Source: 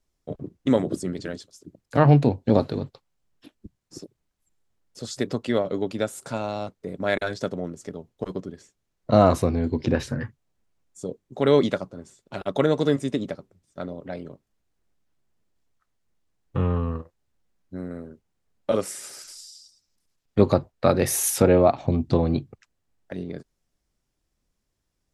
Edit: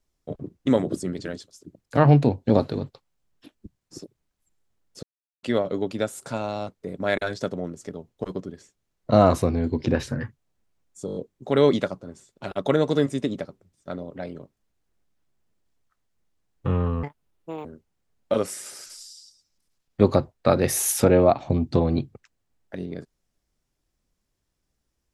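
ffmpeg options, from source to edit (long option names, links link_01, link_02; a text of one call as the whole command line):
ffmpeg -i in.wav -filter_complex "[0:a]asplit=10[link_01][link_02][link_03][link_04][link_05][link_06][link_07][link_08][link_09][link_10];[link_01]atrim=end=5.03,asetpts=PTS-STARTPTS,afade=type=out:start_time=5.026:duration=0.004:curve=hsin[link_11];[link_02]atrim=start=5.03:end=5.43,asetpts=PTS-STARTPTS,volume=0[link_12];[link_03]atrim=start=5.43:end=11.082,asetpts=PTS-STARTPTS,afade=type=in:duration=0.004:curve=hsin[link_13];[link_04]atrim=start=11.058:end=11.082[link_14];[link_05]atrim=start=11.058:end=11.082[link_15];[link_06]atrim=start=11.058:end=11.082[link_16];[link_07]atrim=start=11.058:end=11.082[link_17];[link_08]atrim=start=11.058:end=16.934[link_18];[link_09]atrim=start=16.93:end=18.03,asetpts=PTS-STARTPTS,asetrate=78057,aresample=44100[link_19];[link_10]atrim=start=18.026[link_20];[link_11][link_12][link_13]concat=n=3:v=0:a=1[link_21];[link_21][link_14]acrossfade=duration=0.004:curve1=hsin:curve2=hsin[link_22];[link_22][link_15]acrossfade=duration=0.004:curve1=hsin:curve2=hsin[link_23];[link_23][link_16]acrossfade=duration=0.004:curve1=hsin:curve2=hsin[link_24];[link_24][link_17]acrossfade=duration=0.004:curve1=hsin:curve2=hsin[link_25];[link_25][link_18]acrossfade=duration=0.004:curve1=hsin:curve2=hsin[link_26];[link_26][link_19]acrossfade=duration=0.004:curve1=hsin:curve2=hsin[link_27];[link_27][link_20]acrossfade=duration=0.004:curve1=hsin:curve2=hsin" out.wav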